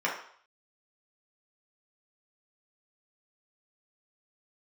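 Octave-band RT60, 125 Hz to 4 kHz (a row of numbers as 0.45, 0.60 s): 0.35, 0.40, 0.55, 0.60, 0.55, 0.55 s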